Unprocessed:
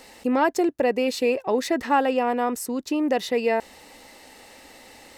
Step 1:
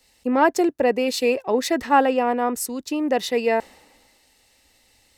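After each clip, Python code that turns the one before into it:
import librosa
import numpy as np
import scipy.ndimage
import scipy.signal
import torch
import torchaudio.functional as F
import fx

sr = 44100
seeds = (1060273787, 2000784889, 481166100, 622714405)

y = fx.band_widen(x, sr, depth_pct=70)
y = y * 10.0 ** (2.0 / 20.0)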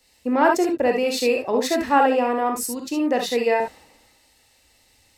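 y = fx.rev_gated(x, sr, seeds[0], gate_ms=90, shape='rising', drr_db=2.0)
y = y * 10.0 ** (-1.5 / 20.0)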